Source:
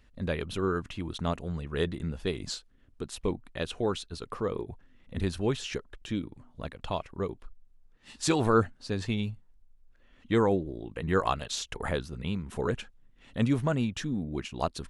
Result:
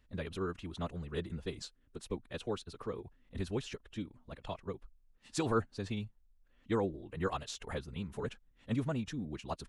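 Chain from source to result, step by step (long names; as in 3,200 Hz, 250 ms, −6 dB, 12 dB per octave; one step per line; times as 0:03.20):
floating-point word with a short mantissa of 8 bits
phase-vocoder stretch with locked phases 0.65×
level −7 dB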